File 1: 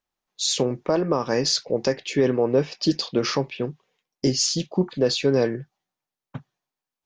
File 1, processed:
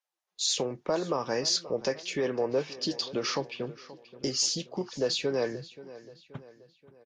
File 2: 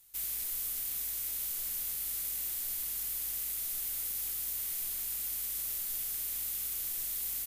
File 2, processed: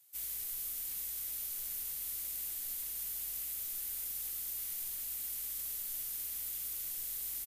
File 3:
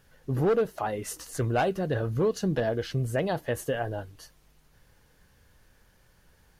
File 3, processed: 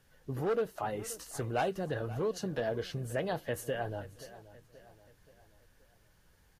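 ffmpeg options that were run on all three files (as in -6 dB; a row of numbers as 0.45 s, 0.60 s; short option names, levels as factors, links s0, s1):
-filter_complex "[0:a]acrossover=split=420|3000[s0][s1][s2];[s0]acompressor=threshold=0.0282:ratio=4[s3];[s3][s1][s2]amix=inputs=3:normalize=0,asplit=2[s4][s5];[s5]adelay=529,lowpass=f=4700:p=1,volume=0.141,asplit=2[s6][s7];[s7]adelay=529,lowpass=f=4700:p=1,volume=0.49,asplit=2[s8][s9];[s9]adelay=529,lowpass=f=4700:p=1,volume=0.49,asplit=2[s10][s11];[s11]adelay=529,lowpass=f=4700:p=1,volume=0.49[s12];[s4][s6][s8][s10][s12]amix=inputs=5:normalize=0,volume=0.562" -ar 44100 -c:a libvorbis -b:a 48k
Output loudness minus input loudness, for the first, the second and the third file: -7.0 LU, -3.5 LU, -6.5 LU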